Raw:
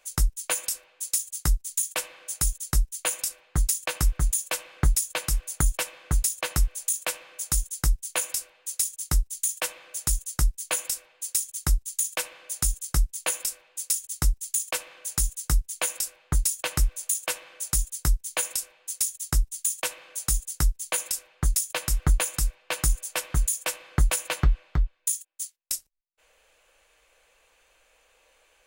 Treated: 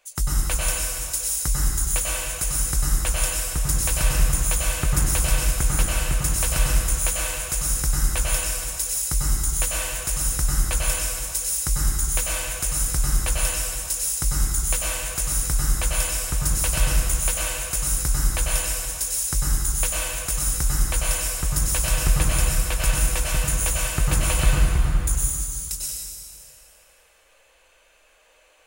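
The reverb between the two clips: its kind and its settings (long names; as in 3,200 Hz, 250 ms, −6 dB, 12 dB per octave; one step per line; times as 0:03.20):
dense smooth reverb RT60 2.4 s, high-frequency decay 0.85×, pre-delay 85 ms, DRR −6 dB
level −2 dB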